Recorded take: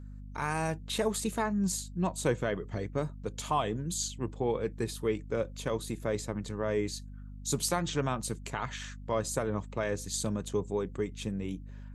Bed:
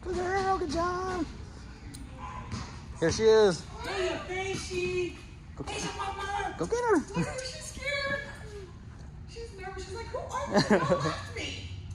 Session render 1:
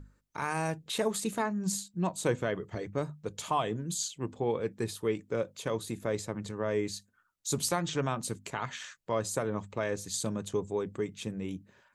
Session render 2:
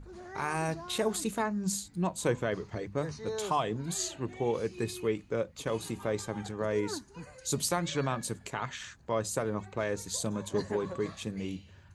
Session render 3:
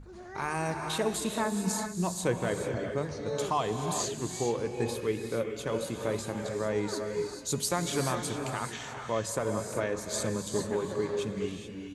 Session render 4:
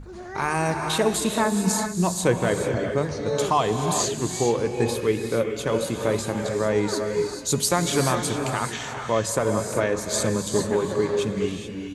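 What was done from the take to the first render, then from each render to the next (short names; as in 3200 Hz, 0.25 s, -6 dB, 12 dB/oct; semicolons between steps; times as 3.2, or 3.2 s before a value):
notches 50/100/150/200/250 Hz
add bed -15.5 dB
echo 0.411 s -18.5 dB; non-linear reverb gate 0.46 s rising, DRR 4.5 dB
gain +8 dB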